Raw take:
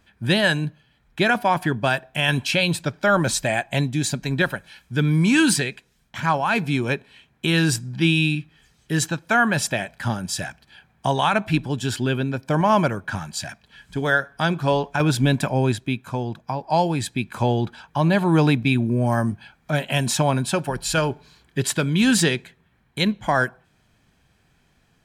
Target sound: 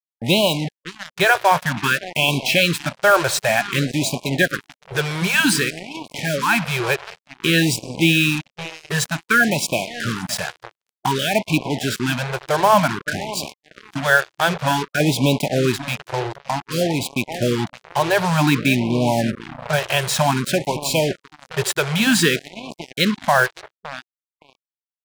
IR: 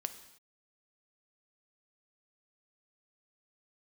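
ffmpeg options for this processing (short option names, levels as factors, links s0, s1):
-filter_complex "[0:a]asplit=2[s0][s1];[s1]adelay=565,lowpass=f=2200:p=1,volume=0.178,asplit=2[s2][s3];[s3]adelay=565,lowpass=f=2200:p=1,volume=0.53,asplit=2[s4][s5];[s5]adelay=565,lowpass=f=2200:p=1,volume=0.53,asplit=2[s6][s7];[s7]adelay=565,lowpass=f=2200:p=1,volume=0.53,asplit=2[s8][s9];[s9]adelay=565,lowpass=f=2200:p=1,volume=0.53[s10];[s0][s2][s4][s6][s8][s10]amix=inputs=6:normalize=0,asplit=2[s11][s12];[1:a]atrim=start_sample=2205,lowpass=5900[s13];[s12][s13]afir=irnorm=-1:irlink=0,volume=0.668[s14];[s11][s14]amix=inputs=2:normalize=0,acrusher=bits=3:mix=0:aa=0.5,lowshelf=f=140:g=-12,afftfilt=real='re*(1-between(b*sr/1024,220*pow(1600/220,0.5+0.5*sin(2*PI*0.54*pts/sr))/1.41,220*pow(1600/220,0.5+0.5*sin(2*PI*0.54*pts/sr))*1.41))':imag='im*(1-between(b*sr/1024,220*pow(1600/220,0.5+0.5*sin(2*PI*0.54*pts/sr))/1.41,220*pow(1600/220,0.5+0.5*sin(2*PI*0.54*pts/sr))*1.41))':win_size=1024:overlap=0.75,volume=1.12"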